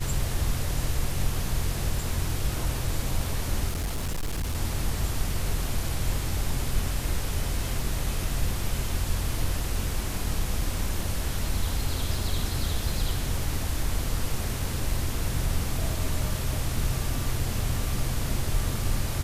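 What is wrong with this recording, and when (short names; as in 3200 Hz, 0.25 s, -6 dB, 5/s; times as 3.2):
3.68–4.56 clipped -25 dBFS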